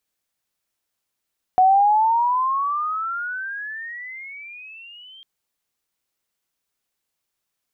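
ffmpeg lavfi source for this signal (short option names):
-f lavfi -i "aevalsrc='pow(10,(-10.5-31*t/3.65)/20)*sin(2*PI*735*3.65/(25.5*log(2)/12)*(exp(25.5*log(2)/12*t/3.65)-1))':d=3.65:s=44100"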